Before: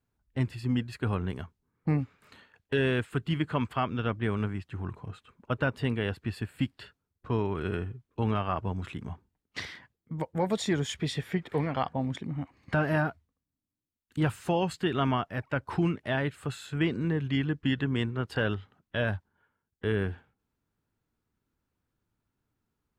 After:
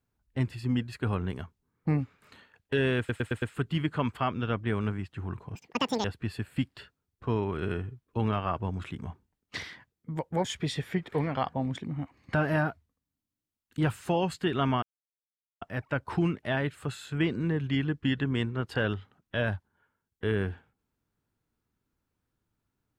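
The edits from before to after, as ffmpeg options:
-filter_complex "[0:a]asplit=9[s0][s1][s2][s3][s4][s5][s6][s7][s8];[s0]atrim=end=3.092[s9];[s1]atrim=start=2.978:end=3.092[s10];[s2]atrim=start=2.978:end=3.092[s11];[s3]atrim=start=2.978:end=3.092[s12];[s4]atrim=start=2.978:end=5.114[s13];[s5]atrim=start=5.11:end=6.07,asetpts=PTS-STARTPTS,asetrate=85554,aresample=44100[s14];[s6]atrim=start=6.066:end=10.472[s15];[s7]atrim=start=10.838:end=15.22,asetpts=PTS-STARTPTS,afade=t=out:st=4.378:d=0.004:c=hsin,apad=pad_dur=0.79[s16];[s8]atrim=start=15.22,asetpts=PTS-STARTPTS,afade=t=in:d=0.004:c=hsin[s17];[s9][s10]acrossfade=d=0.004:c1=hsin:c2=hsin[s18];[s18][s11]acrossfade=d=0.004:c1=hsin:c2=hsin[s19];[s19][s12]acrossfade=d=0.004:c1=hsin:c2=hsin[s20];[s20][s13]acrossfade=d=0.004:c1=hsin:c2=hsin[s21];[s21][s14]acrossfade=d=0.004:c1=hsin:c2=hsin[s22];[s22][s15]acrossfade=d=0.004:c1=hsin:c2=hsin[s23];[s16][s17]concat=n=2:v=0:a=1[s24];[s23][s24]acrossfade=d=0.004:c1=hsin:c2=hsin"

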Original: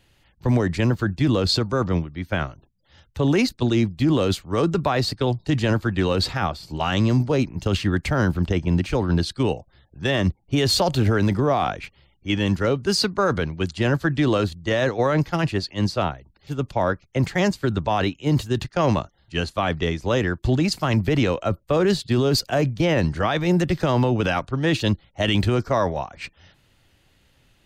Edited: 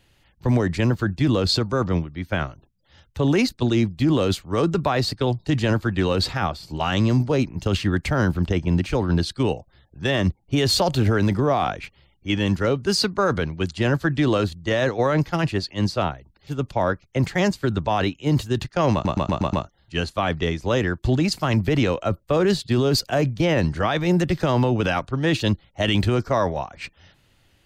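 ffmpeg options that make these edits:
-filter_complex "[0:a]asplit=6[s0][s1][s2][s3][s4][s5];[s0]atrim=end=19.052[s6];[s1]atrim=start=18.928:end=19.052[s7];[s2]atrim=start=18.928:end=19.052[s8];[s3]atrim=start=18.928:end=19.052[s9];[s4]atrim=start=18.928:end=19.052[s10];[s5]atrim=start=18.928[s11];[s6][s7]acrossfade=d=0.004:c1=hsin:c2=hsin[s12];[s12][s8]acrossfade=d=0.004:c1=hsin:c2=hsin[s13];[s13][s9]acrossfade=d=0.004:c1=hsin:c2=hsin[s14];[s14][s10]acrossfade=d=0.004:c1=hsin:c2=hsin[s15];[s15][s11]acrossfade=d=0.004:c1=hsin:c2=hsin"

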